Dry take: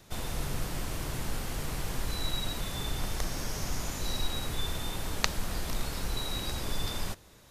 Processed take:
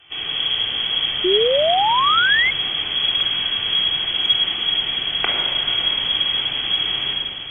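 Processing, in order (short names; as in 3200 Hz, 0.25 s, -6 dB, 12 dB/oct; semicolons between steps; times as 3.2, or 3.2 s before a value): inverted band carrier 3300 Hz; added harmonics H 2 -41 dB, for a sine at -7.5 dBFS; on a send: diffused feedback echo 0.501 s, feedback 44%, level -9.5 dB; on the sum: shoebox room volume 2400 m³, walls mixed, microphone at 3.6 m; painted sound rise, 1.24–2.51, 350–2200 Hz -22 dBFS; gain +4.5 dB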